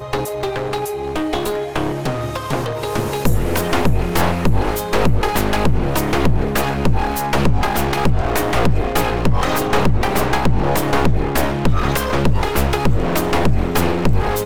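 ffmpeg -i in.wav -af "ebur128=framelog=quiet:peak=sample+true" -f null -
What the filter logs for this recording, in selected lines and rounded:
Integrated loudness:
  I:         -18.8 LUFS
  Threshold: -28.8 LUFS
Loudness range:
  LRA:         2.7 LU
  Threshold: -38.6 LUFS
  LRA low:   -20.6 LUFS
  LRA high:  -17.9 LUFS
Sample peak:
  Peak:       -4.9 dBFS
True peak:
  Peak:       -4.4 dBFS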